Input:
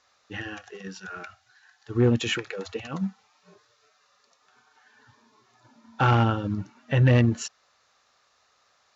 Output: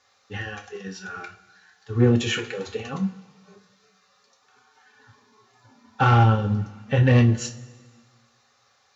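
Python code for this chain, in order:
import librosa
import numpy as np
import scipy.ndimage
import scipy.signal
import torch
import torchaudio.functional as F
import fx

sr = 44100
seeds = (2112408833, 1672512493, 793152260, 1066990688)

y = fx.notch_comb(x, sr, f0_hz=320.0)
y = fx.rev_double_slope(y, sr, seeds[0], early_s=0.27, late_s=1.6, knee_db=-19, drr_db=3.0)
y = F.gain(torch.from_numpy(y), 2.0).numpy()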